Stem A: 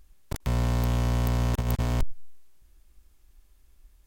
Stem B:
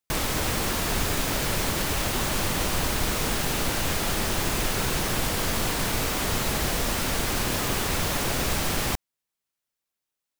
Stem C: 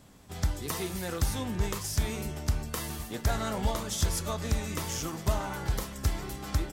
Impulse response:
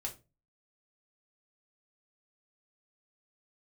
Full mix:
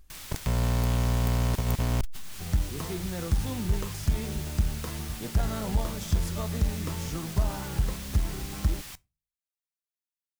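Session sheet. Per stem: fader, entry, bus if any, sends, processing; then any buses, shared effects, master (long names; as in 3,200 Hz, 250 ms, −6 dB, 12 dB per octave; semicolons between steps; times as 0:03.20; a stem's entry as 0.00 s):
0.0 dB, 0.00 s, no send, no processing
−7.5 dB, 0.00 s, send −14.5 dB, guitar amp tone stack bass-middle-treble 5-5-5
−3.5 dB, 2.10 s, no send, spectral tilt −2 dB per octave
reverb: on, RT60 0.30 s, pre-delay 3 ms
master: parametric band 170 Hz +4.5 dB 0.2 octaves; saturating transformer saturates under 77 Hz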